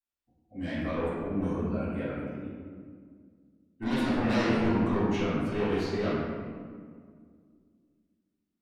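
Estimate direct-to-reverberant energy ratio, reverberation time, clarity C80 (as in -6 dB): -15.5 dB, 1.9 s, -0.5 dB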